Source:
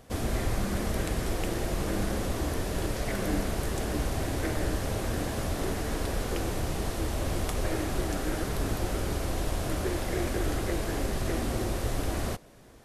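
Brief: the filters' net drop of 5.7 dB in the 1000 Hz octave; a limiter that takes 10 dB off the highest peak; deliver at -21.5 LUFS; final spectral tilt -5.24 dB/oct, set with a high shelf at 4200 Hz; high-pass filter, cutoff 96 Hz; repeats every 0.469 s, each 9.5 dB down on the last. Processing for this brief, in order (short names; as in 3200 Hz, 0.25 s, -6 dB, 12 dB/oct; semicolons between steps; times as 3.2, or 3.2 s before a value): HPF 96 Hz; bell 1000 Hz -8 dB; high shelf 4200 Hz -5 dB; limiter -28 dBFS; feedback echo 0.469 s, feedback 33%, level -9.5 dB; gain +15.5 dB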